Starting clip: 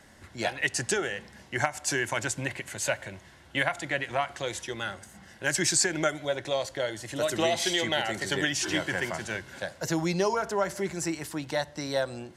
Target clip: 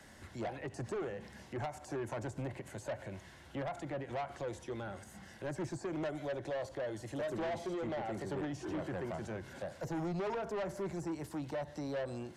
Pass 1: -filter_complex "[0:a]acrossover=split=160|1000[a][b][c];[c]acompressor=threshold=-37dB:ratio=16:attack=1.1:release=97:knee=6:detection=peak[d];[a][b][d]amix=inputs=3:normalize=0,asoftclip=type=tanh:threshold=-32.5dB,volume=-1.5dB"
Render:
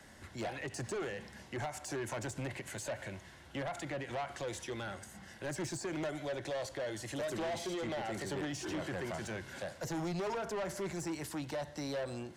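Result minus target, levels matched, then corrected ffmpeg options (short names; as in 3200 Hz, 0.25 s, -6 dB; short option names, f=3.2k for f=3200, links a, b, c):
compressor: peak gain reduction -11.5 dB
-filter_complex "[0:a]acrossover=split=160|1000[a][b][c];[c]acompressor=threshold=-49dB:ratio=16:attack=1.1:release=97:knee=6:detection=peak[d];[a][b][d]amix=inputs=3:normalize=0,asoftclip=type=tanh:threshold=-32.5dB,volume=-1.5dB"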